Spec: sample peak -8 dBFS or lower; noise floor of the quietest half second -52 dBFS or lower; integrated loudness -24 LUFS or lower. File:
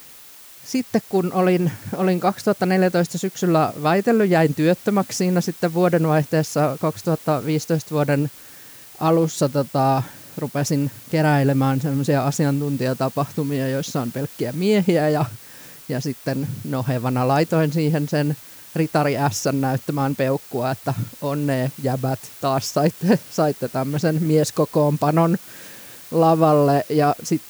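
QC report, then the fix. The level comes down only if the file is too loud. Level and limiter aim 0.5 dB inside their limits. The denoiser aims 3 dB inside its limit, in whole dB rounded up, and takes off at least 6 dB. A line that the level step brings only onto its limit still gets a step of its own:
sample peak -4.5 dBFS: fail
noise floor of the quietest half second -43 dBFS: fail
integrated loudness -21.0 LUFS: fail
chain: denoiser 9 dB, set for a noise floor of -43 dBFS; gain -3.5 dB; limiter -8.5 dBFS

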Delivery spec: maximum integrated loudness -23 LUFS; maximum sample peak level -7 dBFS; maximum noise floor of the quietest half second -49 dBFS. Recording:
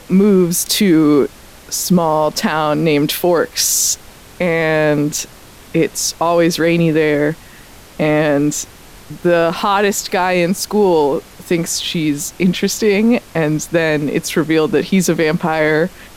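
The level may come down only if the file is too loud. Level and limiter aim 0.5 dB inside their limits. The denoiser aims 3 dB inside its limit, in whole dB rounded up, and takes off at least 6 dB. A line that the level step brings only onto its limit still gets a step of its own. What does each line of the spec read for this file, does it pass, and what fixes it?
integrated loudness -15.0 LUFS: fail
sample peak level -3.5 dBFS: fail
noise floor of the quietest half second -39 dBFS: fail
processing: denoiser 6 dB, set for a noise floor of -39 dBFS; gain -8.5 dB

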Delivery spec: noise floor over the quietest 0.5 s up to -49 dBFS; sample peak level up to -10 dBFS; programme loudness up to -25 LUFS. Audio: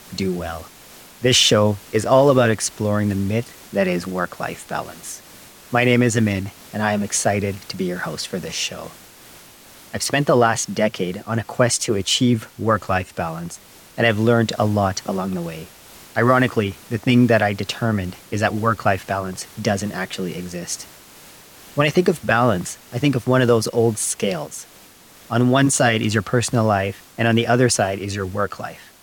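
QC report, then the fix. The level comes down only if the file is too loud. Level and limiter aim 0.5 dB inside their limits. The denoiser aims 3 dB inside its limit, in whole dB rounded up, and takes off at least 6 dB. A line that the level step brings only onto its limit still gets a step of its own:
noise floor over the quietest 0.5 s -47 dBFS: fail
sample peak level -4.0 dBFS: fail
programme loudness -20.0 LUFS: fail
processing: gain -5.5 dB; limiter -10.5 dBFS

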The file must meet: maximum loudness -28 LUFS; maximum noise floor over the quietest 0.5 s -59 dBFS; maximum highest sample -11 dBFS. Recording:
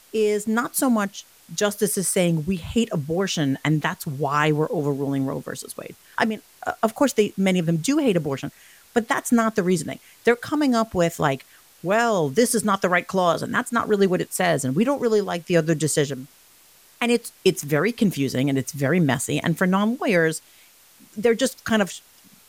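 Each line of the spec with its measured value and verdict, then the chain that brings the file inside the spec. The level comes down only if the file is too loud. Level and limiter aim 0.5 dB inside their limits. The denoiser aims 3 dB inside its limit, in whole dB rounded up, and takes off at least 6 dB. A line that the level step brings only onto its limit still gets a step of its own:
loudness -22.5 LUFS: fail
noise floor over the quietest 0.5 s -53 dBFS: fail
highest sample -5.5 dBFS: fail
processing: denoiser 6 dB, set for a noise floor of -53 dBFS; gain -6 dB

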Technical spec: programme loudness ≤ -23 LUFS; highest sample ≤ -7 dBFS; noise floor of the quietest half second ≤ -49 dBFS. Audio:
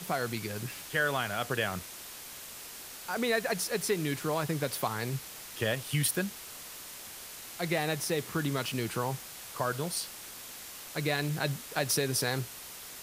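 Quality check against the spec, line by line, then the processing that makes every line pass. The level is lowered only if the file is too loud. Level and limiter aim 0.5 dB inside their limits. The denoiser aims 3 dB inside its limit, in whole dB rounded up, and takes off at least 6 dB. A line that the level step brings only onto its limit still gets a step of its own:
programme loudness -33.0 LUFS: OK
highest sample -13.5 dBFS: OK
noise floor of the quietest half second -45 dBFS: fail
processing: denoiser 7 dB, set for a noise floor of -45 dBFS

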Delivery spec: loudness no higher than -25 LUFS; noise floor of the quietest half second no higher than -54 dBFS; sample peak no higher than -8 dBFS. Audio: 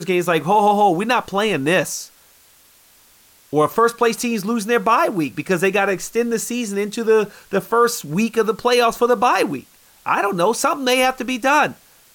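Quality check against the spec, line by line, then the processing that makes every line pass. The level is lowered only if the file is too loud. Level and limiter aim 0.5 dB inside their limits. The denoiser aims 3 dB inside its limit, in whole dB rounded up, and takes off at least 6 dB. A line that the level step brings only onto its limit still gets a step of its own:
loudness -18.0 LUFS: fail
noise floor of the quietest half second -52 dBFS: fail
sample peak -5.5 dBFS: fail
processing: gain -7.5 dB

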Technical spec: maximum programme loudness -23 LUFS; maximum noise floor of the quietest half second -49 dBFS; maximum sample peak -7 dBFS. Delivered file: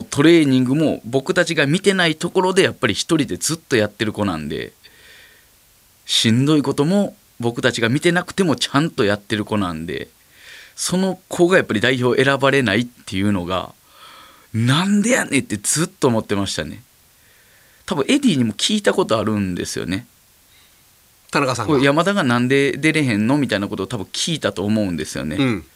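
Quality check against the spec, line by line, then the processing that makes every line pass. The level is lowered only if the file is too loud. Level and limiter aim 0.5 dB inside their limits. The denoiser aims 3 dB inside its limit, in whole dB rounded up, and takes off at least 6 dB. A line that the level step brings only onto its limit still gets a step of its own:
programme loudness -18.5 LUFS: fail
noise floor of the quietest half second -53 dBFS: OK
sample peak -1.5 dBFS: fail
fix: gain -5 dB; limiter -7.5 dBFS

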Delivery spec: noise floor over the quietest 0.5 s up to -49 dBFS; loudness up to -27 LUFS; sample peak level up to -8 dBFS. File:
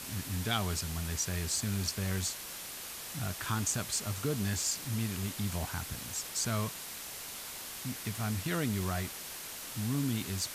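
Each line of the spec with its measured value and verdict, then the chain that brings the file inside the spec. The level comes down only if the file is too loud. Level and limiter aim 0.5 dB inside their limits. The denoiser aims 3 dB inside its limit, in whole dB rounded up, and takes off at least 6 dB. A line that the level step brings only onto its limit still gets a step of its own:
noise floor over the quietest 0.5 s -43 dBFS: fail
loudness -34.5 LUFS: OK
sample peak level -16.5 dBFS: OK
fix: denoiser 9 dB, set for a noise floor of -43 dBFS

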